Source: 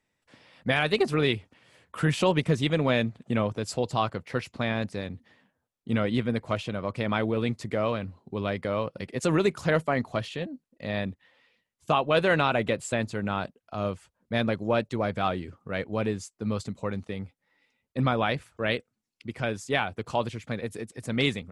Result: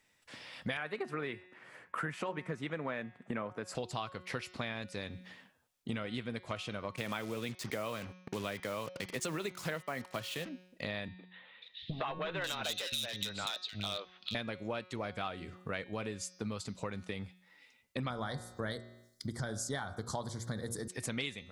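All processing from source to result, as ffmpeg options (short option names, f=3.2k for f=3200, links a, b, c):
-filter_complex "[0:a]asettb=1/sr,asplit=3[a][b][c];[a]atrim=end=0.774[d];[b]atrim=start=0.77:end=3.75,asetpts=PTS-STARTPTS,afade=t=in:d=0.004:c=qsin,afade=t=out:st=2.976:d=0.004:c=qsin,highpass=150,highshelf=f=2.4k:t=q:w=1.5:g=-11[e];[c]atrim=start=3.746[f];[d][e]acrossfade=d=0.004:c1=hsin:c2=qsin[g];[g][f]acrossfade=d=0.004:c1=qsin:c2=hsin,asettb=1/sr,asplit=3[h][i][j];[h]atrim=end=6.964[k];[i]atrim=start=6.96:end=10.49,asetpts=PTS-STARTPTS,afade=t=in:d=0.004:c=qsin,afade=t=out:st=3.526:d=0.004:c=qsin,agate=range=-33dB:threshold=-52dB:ratio=3:release=100:detection=peak,highpass=f=94:w=0.5412,highpass=f=94:w=1.3066,acrusher=bits=6:mix=0:aa=0.5[l];[j]atrim=start=10.486[m];[k][l]acrossfade=d=0.004:c1=hsin:c2=qsin[n];[n][m]acrossfade=d=0.004:c1=qsin:c2=hsin,asettb=1/sr,asplit=3[o][p][q];[o]atrim=end=11.084[r];[p]atrim=start=11.08:end=14.35,asetpts=PTS-STARTPTS,afade=t=in:d=0.004:c=qsin,afade=t=out:st=3.266:d=0.004:c=qsin,lowpass=f=3.8k:t=q:w=9,asoftclip=type=hard:threshold=-19dB,acrossover=split=320|2400[s][t][u];[t]adelay=110[v];[u]adelay=540[w];[s][v][w]amix=inputs=3:normalize=0,atrim=end_sample=144207[x];[q]atrim=start=14.346[y];[r][x]acrossfade=d=0.004:c1=hsin:c2=qsin[z];[z][y]acrossfade=d=0.004:c1=qsin:c2=hsin,asettb=1/sr,asplit=3[aa][ab][ac];[aa]atrim=end=18.104[ad];[ab]atrim=start=18.1:end=20.88,asetpts=PTS-STARTPTS,afade=t=in:d=0.004:c=qsin,afade=t=out:st=2.776:d=0.004:c=qsin,asuperstop=centerf=2600:order=4:qfactor=1.3,bass=f=250:g=8,treble=f=4k:g=7,bandreject=f=58.28:t=h:w=4,bandreject=f=116.56:t=h:w=4,bandreject=f=174.84:t=h:w=4,bandreject=f=233.12:t=h:w=4,bandreject=f=291.4:t=h:w=4,bandreject=f=349.68:t=h:w=4,bandreject=f=407.96:t=h:w=4,bandreject=f=466.24:t=h:w=4,bandreject=f=524.52:t=h:w=4,bandreject=f=582.8:t=h:w=4,bandreject=f=641.08:t=h:w=4,bandreject=f=699.36:t=h:w=4,bandreject=f=757.64:t=h:w=4,bandreject=f=815.92:t=h:w=4,bandreject=f=874.2:t=h:w=4,bandreject=f=932.48:t=h:w=4,bandreject=f=990.76:t=h:w=4,bandreject=f=1.04904k:t=h:w=4,bandreject=f=1.10732k:t=h:w=4,bandreject=f=1.1656k:t=h:w=4,bandreject=f=1.22388k:t=h:w=4,bandreject=f=1.28216k:t=h:w=4,bandreject=f=1.34044k:t=h:w=4,bandreject=f=1.39872k:t=h:w=4,bandreject=f=1.457k:t=h:w=4,bandreject=f=1.51528k:t=h:w=4,bandreject=f=1.57356k:t=h:w=4[ae];[ac]atrim=start=20.876[af];[ad][ae]acrossfade=d=0.004:c1=hsin:c2=qsin[ag];[ag][af]acrossfade=d=0.004:c1=qsin:c2=hsin,tiltshelf=f=1.1k:g=-4.5,bandreject=f=182.7:t=h:w=4,bandreject=f=365.4:t=h:w=4,bandreject=f=548.1:t=h:w=4,bandreject=f=730.8:t=h:w=4,bandreject=f=913.5:t=h:w=4,bandreject=f=1.0962k:t=h:w=4,bandreject=f=1.2789k:t=h:w=4,bandreject=f=1.4616k:t=h:w=4,bandreject=f=1.6443k:t=h:w=4,bandreject=f=1.827k:t=h:w=4,bandreject=f=2.0097k:t=h:w=4,bandreject=f=2.1924k:t=h:w=4,bandreject=f=2.3751k:t=h:w=4,bandreject=f=2.5578k:t=h:w=4,bandreject=f=2.7405k:t=h:w=4,bandreject=f=2.9232k:t=h:w=4,bandreject=f=3.1059k:t=h:w=4,bandreject=f=3.2886k:t=h:w=4,bandreject=f=3.4713k:t=h:w=4,bandreject=f=3.654k:t=h:w=4,bandreject=f=3.8367k:t=h:w=4,bandreject=f=4.0194k:t=h:w=4,bandreject=f=4.2021k:t=h:w=4,bandreject=f=4.3848k:t=h:w=4,bandreject=f=4.5675k:t=h:w=4,bandreject=f=4.7502k:t=h:w=4,bandreject=f=4.9329k:t=h:w=4,bandreject=f=5.1156k:t=h:w=4,bandreject=f=5.2983k:t=h:w=4,bandreject=f=5.481k:t=h:w=4,bandreject=f=5.6637k:t=h:w=4,bandreject=f=5.8464k:t=h:w=4,bandreject=f=6.0291k:t=h:w=4,bandreject=f=6.2118k:t=h:w=4,bandreject=f=6.3945k:t=h:w=4,acompressor=threshold=-41dB:ratio=6,volume=5dB"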